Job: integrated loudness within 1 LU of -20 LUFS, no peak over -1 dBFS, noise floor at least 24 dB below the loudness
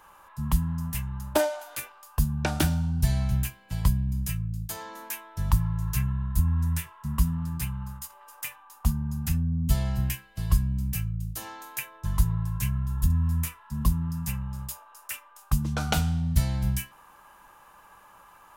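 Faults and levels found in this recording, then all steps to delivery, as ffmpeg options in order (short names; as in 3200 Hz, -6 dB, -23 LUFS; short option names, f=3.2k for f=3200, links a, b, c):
loudness -29.0 LUFS; peak -9.0 dBFS; loudness target -20.0 LUFS
-> -af "volume=9dB,alimiter=limit=-1dB:level=0:latency=1"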